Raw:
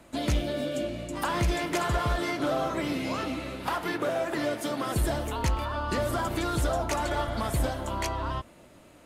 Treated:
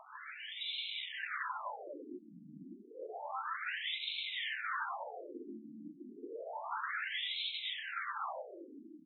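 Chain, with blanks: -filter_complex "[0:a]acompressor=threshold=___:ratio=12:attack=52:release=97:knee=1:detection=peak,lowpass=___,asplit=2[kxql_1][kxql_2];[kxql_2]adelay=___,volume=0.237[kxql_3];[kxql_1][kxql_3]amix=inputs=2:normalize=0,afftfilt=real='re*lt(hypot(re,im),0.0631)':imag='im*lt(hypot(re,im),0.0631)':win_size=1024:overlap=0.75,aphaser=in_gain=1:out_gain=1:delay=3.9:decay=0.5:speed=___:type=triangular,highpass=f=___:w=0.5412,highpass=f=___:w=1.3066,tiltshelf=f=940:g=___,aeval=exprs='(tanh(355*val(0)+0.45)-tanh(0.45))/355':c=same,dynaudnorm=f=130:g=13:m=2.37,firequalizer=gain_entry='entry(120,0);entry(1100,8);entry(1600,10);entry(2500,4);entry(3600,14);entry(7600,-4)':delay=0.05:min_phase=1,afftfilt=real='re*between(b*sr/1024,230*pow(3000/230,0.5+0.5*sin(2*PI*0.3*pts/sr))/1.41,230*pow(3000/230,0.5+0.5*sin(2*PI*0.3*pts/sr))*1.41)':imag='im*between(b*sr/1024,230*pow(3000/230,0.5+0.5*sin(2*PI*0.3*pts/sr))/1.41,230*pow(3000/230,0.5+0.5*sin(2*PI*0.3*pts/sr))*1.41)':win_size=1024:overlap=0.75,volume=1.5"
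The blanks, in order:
0.0447, 9800, 32, 0.74, 47, 47, 3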